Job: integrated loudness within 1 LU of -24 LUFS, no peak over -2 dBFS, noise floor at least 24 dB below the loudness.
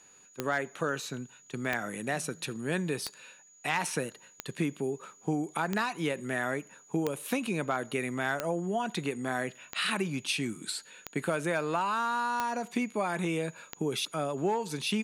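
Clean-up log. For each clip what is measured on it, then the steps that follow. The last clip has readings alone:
clicks 11; steady tone 6800 Hz; tone level -56 dBFS; loudness -32.5 LUFS; peak -13.0 dBFS; loudness target -24.0 LUFS
-> de-click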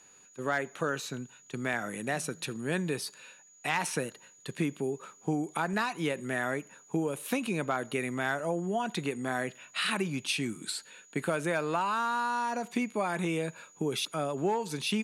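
clicks 0; steady tone 6800 Hz; tone level -56 dBFS
-> notch 6800 Hz, Q 30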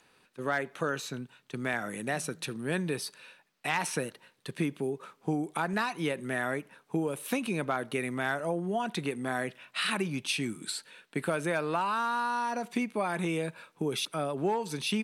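steady tone none; loudness -32.5 LUFS; peak -17.0 dBFS; loudness target -24.0 LUFS
-> gain +8.5 dB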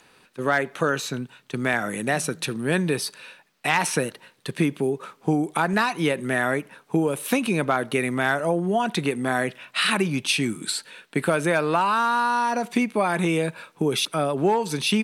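loudness -24.0 LUFS; peak -8.5 dBFS; noise floor -59 dBFS

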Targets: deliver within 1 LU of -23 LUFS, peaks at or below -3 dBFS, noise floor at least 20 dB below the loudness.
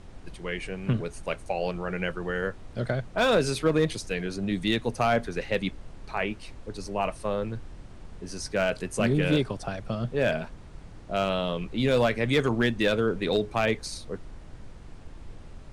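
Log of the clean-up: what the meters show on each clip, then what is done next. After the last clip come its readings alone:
clipped 0.3%; flat tops at -15.0 dBFS; noise floor -45 dBFS; noise floor target -48 dBFS; loudness -28.0 LUFS; peak -15.0 dBFS; loudness target -23.0 LUFS
-> clip repair -15 dBFS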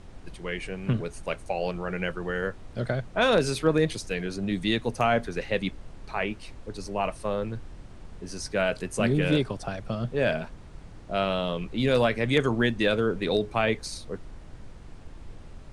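clipped 0.0%; noise floor -45 dBFS; noise floor target -48 dBFS
-> noise print and reduce 6 dB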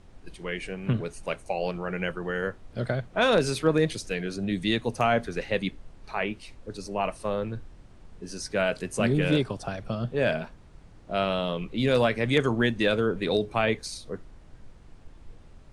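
noise floor -51 dBFS; loudness -27.5 LUFS; peak -8.5 dBFS; loudness target -23.0 LUFS
-> gain +4.5 dB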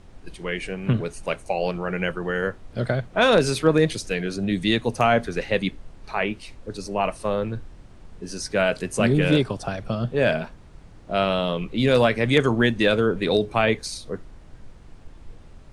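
loudness -23.0 LUFS; peak -4.0 dBFS; noise floor -47 dBFS

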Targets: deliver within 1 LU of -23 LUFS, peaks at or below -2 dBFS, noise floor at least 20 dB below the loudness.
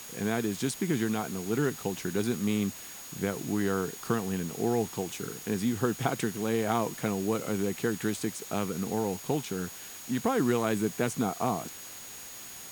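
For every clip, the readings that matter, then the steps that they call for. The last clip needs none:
steady tone 6700 Hz; tone level -47 dBFS; noise floor -44 dBFS; noise floor target -51 dBFS; loudness -31.0 LUFS; peak -11.0 dBFS; loudness target -23.0 LUFS
-> notch 6700 Hz, Q 30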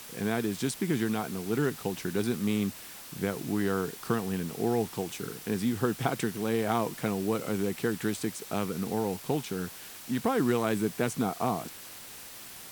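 steady tone none; noise floor -46 dBFS; noise floor target -51 dBFS
-> denoiser 6 dB, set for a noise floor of -46 dBFS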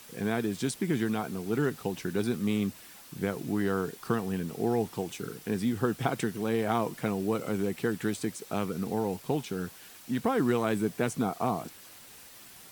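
noise floor -51 dBFS; loudness -31.0 LUFS; peak -11.0 dBFS; loudness target -23.0 LUFS
-> gain +8 dB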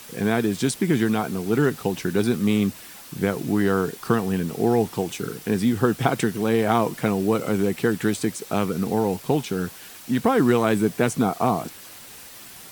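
loudness -23.0 LUFS; peak -3.0 dBFS; noise floor -43 dBFS

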